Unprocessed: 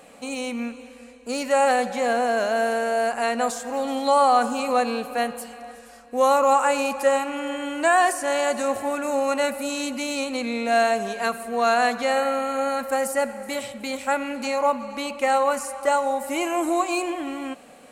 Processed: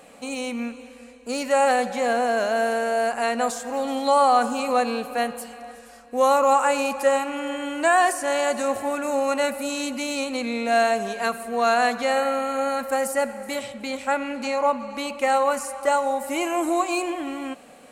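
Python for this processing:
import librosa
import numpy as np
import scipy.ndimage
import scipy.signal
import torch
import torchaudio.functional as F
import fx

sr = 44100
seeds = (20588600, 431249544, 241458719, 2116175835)

y = fx.high_shelf(x, sr, hz=11000.0, db=-12.0, at=(13.59, 14.95))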